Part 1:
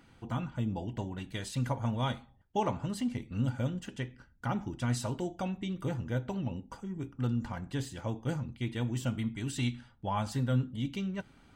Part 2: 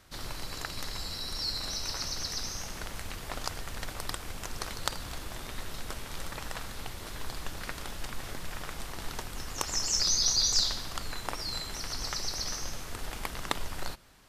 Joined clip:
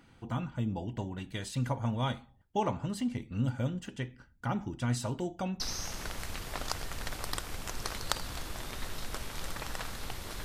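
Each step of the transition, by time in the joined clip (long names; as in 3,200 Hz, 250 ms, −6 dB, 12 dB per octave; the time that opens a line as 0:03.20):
part 1
0:05.60: continue with part 2 from 0:02.36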